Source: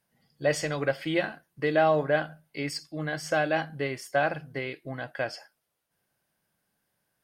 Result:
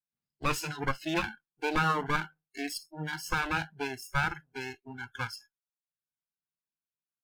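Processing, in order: minimum comb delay 0.76 ms; spectral noise reduction 26 dB

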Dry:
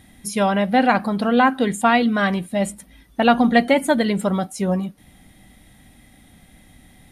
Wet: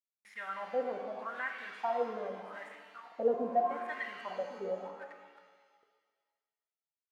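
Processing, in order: 2.68–3.87 tilt shelf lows +7.5 dB, about 740 Hz; outdoor echo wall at 190 m, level -18 dB; bit-crush 5-bit; wah 0.82 Hz 430–2000 Hz, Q 9.4; shimmer reverb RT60 1.5 s, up +7 st, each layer -8 dB, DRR 4 dB; gain -6 dB

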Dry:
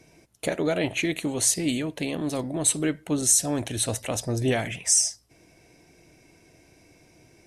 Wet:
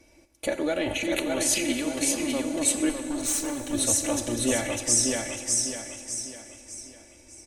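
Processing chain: low shelf 330 Hz +5.5 dB; feedback echo 0.602 s, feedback 40%, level -3 dB; 0.79–1.7 transient shaper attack -11 dB, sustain +9 dB; 2.89–3.73 tube stage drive 21 dB, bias 0.65; bell 170 Hz -10 dB 1.2 oct; comb 3.5 ms, depth 70%; plate-style reverb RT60 3.2 s, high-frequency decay 0.85×, DRR 8.5 dB; gain -3.5 dB

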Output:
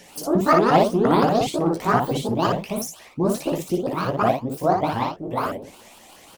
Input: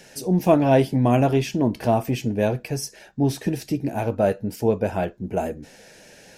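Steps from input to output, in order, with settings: repeated pitch sweeps +12 st, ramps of 0.176 s; early reflections 17 ms -8 dB, 58 ms -3.5 dB

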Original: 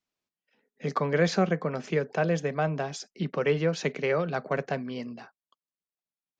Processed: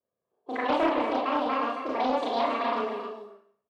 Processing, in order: crackle 100/s -55 dBFS; low-pass opened by the level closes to 410 Hz, open at -21 dBFS; modulation noise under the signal 27 dB; treble ducked by the level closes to 1800 Hz, closed at -22.5 dBFS; comb 3.1 ms, depth 54%; wide varispeed 1.73×; HPF 210 Hz 12 dB/oct; tilt -2.5 dB/oct; on a send: echo 0.271 s -8 dB; on the sum: Schroeder reverb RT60 0.56 s, combs from 27 ms, DRR -4.5 dB; Doppler distortion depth 0.23 ms; gain -5.5 dB

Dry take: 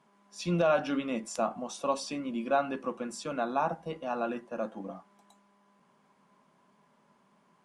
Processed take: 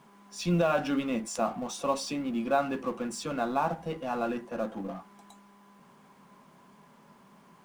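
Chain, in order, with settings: G.711 law mismatch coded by mu; low shelf 130 Hz +6.5 dB; notch 610 Hz, Q 20

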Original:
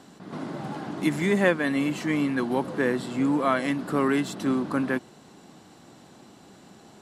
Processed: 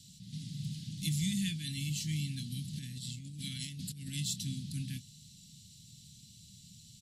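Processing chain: inverse Chebyshev band-stop 440–1200 Hz, stop band 70 dB; doubler 26 ms -13 dB; 2.73–4.14 negative-ratio compressor -46 dBFS, ratio -1; gain +3.5 dB

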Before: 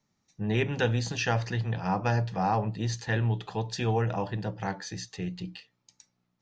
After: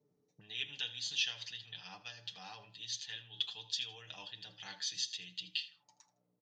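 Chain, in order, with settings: tone controls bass +11 dB, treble +14 dB; comb 6.8 ms, depth 61%; de-hum 168.5 Hz, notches 12; reverse; compressor 5:1, threshold -28 dBFS, peak gain reduction 14.5 dB; reverse; auto-wah 400–3300 Hz, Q 6.5, up, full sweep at -33.5 dBFS; feedback echo 80 ms, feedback 24%, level -17 dB; gain +11 dB

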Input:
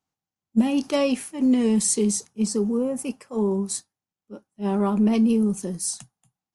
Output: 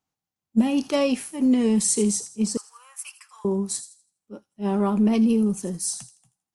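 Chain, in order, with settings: 2.57–3.45 steep high-pass 1100 Hz 36 dB/oct; on a send: thin delay 82 ms, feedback 30%, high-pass 3800 Hz, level -10.5 dB

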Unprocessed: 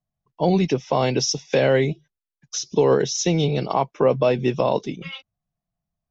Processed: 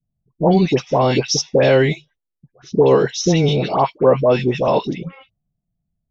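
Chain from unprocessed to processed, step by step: low-pass opened by the level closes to 340 Hz, open at -15.5 dBFS; in parallel at -1 dB: compressor, threshold -31 dBFS, peak gain reduction 17 dB; on the sum: dispersion highs, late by 92 ms, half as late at 1200 Hz; 3.98–4.68 three-band expander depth 70%; gain +3.5 dB

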